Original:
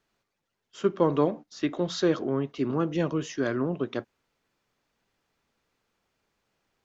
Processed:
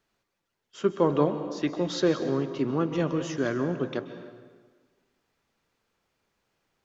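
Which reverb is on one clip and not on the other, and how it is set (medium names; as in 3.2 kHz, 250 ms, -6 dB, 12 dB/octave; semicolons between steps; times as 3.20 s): plate-style reverb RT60 1.5 s, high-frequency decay 0.8×, pre-delay 120 ms, DRR 9.5 dB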